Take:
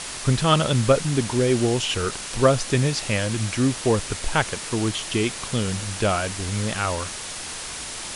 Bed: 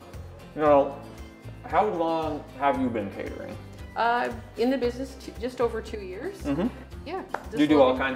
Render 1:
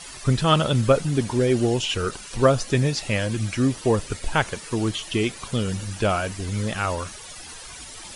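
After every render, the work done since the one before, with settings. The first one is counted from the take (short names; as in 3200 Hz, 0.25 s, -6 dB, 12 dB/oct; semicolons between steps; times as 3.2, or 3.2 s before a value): denoiser 13 dB, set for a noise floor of -34 dBFS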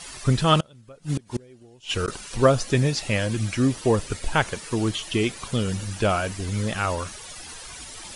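0.6–2.08 flipped gate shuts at -15 dBFS, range -29 dB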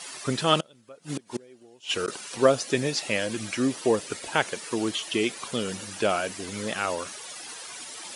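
HPF 270 Hz 12 dB/oct; dynamic EQ 1100 Hz, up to -4 dB, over -34 dBFS, Q 1.3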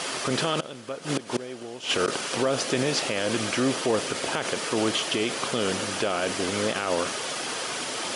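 per-bin compression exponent 0.6; limiter -14 dBFS, peak gain reduction 11 dB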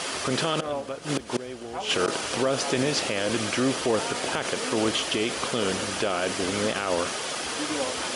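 add bed -12.5 dB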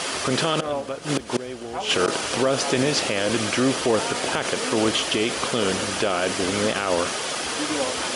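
gain +3.5 dB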